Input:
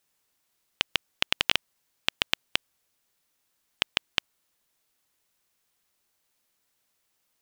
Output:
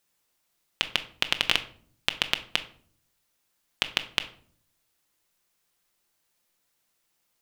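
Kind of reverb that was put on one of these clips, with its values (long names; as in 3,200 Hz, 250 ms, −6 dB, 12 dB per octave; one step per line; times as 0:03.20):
rectangular room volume 610 cubic metres, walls furnished, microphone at 0.83 metres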